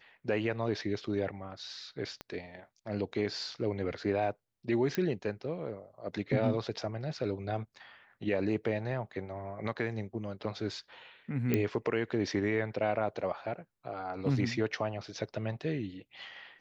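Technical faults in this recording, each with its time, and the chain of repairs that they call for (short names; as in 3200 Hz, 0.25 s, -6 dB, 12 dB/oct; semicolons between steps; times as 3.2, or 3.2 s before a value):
2.21 pop -25 dBFS
4.95 pop -18 dBFS
11.54 pop -15 dBFS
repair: de-click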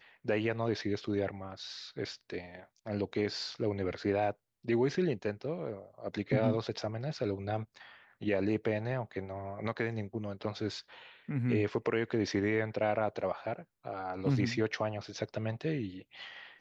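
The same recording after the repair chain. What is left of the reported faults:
2.21 pop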